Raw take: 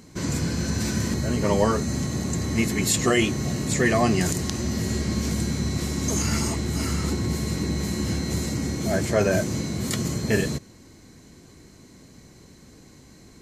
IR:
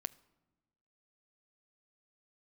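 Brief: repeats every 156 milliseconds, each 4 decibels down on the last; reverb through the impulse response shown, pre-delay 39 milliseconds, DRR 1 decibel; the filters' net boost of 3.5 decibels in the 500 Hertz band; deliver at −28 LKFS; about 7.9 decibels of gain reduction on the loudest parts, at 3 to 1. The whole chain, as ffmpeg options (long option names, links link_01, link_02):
-filter_complex "[0:a]equalizer=frequency=500:width_type=o:gain=4.5,acompressor=threshold=-24dB:ratio=3,aecho=1:1:156|312|468|624|780|936|1092|1248|1404:0.631|0.398|0.25|0.158|0.0994|0.0626|0.0394|0.0249|0.0157,asplit=2[link_01][link_02];[1:a]atrim=start_sample=2205,adelay=39[link_03];[link_02][link_03]afir=irnorm=-1:irlink=0,volume=1dB[link_04];[link_01][link_04]amix=inputs=2:normalize=0,volume=-5dB"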